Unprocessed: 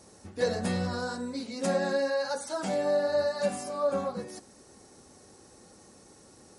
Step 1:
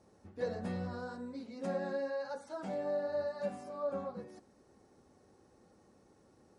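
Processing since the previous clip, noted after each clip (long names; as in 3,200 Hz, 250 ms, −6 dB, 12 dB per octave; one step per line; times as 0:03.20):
low-pass filter 1,500 Hz 6 dB per octave
level −8 dB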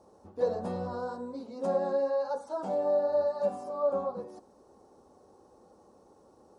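octave-band graphic EQ 125/500/1,000/2,000 Hz −5/+5/+9/−12 dB
level +2.5 dB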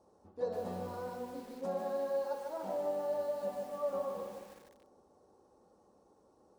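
spring reverb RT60 1.9 s, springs 60 ms, chirp 50 ms, DRR 10.5 dB
feedback echo at a low word length 150 ms, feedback 55%, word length 8 bits, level −4.5 dB
level −7.5 dB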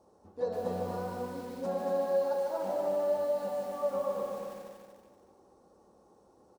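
repeating echo 235 ms, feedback 34%, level −5 dB
level +3 dB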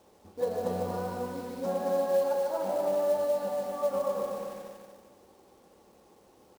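log-companded quantiser 6 bits
level +2.5 dB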